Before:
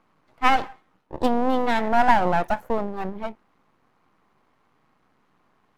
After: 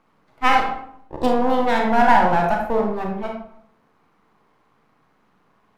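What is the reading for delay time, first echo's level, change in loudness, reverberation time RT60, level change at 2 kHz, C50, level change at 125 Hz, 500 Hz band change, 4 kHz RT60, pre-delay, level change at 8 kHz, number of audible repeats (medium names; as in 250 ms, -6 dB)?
no echo, no echo, +3.5 dB, 0.65 s, +4.0 dB, 4.0 dB, +4.5 dB, +4.5 dB, 0.40 s, 30 ms, no reading, no echo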